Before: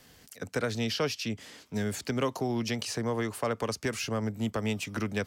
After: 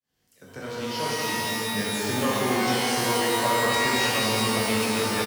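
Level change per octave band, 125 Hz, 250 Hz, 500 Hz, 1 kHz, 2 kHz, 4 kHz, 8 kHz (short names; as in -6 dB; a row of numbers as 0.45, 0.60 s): +1.0, +4.0, +5.5, +12.5, +11.0, +10.5, +10.5 dB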